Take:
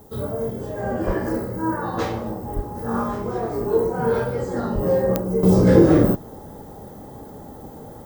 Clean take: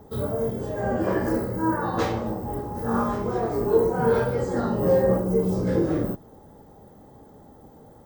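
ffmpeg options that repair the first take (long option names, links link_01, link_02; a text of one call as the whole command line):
ffmpeg -i in.wav -filter_complex "[0:a]adeclick=threshold=4,asplit=3[link_01][link_02][link_03];[link_01]afade=type=out:start_time=1.06:duration=0.02[link_04];[link_02]highpass=frequency=140:width=0.5412,highpass=frequency=140:width=1.3066,afade=type=in:start_time=1.06:duration=0.02,afade=type=out:start_time=1.18:duration=0.02[link_05];[link_03]afade=type=in:start_time=1.18:duration=0.02[link_06];[link_04][link_05][link_06]amix=inputs=3:normalize=0,asplit=3[link_07][link_08][link_09];[link_07]afade=type=out:start_time=2.55:duration=0.02[link_10];[link_08]highpass=frequency=140:width=0.5412,highpass=frequency=140:width=1.3066,afade=type=in:start_time=2.55:duration=0.02,afade=type=out:start_time=2.67:duration=0.02[link_11];[link_09]afade=type=in:start_time=2.67:duration=0.02[link_12];[link_10][link_11][link_12]amix=inputs=3:normalize=0,asplit=3[link_13][link_14][link_15];[link_13]afade=type=out:start_time=4.74:duration=0.02[link_16];[link_14]highpass=frequency=140:width=0.5412,highpass=frequency=140:width=1.3066,afade=type=in:start_time=4.74:duration=0.02,afade=type=out:start_time=4.86:duration=0.02[link_17];[link_15]afade=type=in:start_time=4.86:duration=0.02[link_18];[link_16][link_17][link_18]amix=inputs=3:normalize=0,agate=range=-21dB:threshold=-31dB,asetnsamples=nb_out_samples=441:pad=0,asendcmd='5.43 volume volume -10dB',volume=0dB" out.wav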